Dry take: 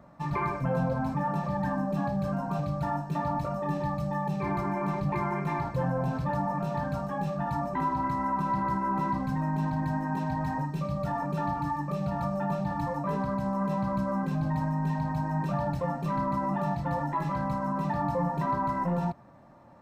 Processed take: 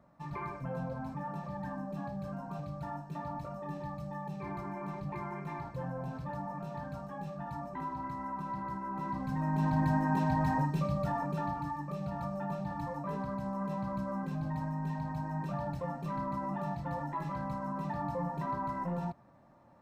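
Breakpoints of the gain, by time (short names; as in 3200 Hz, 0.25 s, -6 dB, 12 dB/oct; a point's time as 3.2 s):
8.92 s -10 dB
9.78 s +1 dB
10.67 s +1 dB
11.72 s -7 dB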